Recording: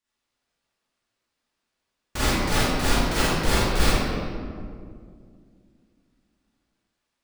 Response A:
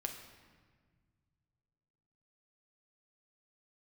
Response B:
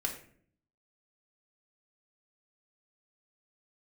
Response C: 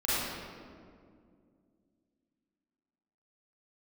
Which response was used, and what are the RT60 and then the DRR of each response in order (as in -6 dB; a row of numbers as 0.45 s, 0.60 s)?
C; 1.6 s, 0.55 s, 2.2 s; 3.0 dB, 0.0 dB, -11.5 dB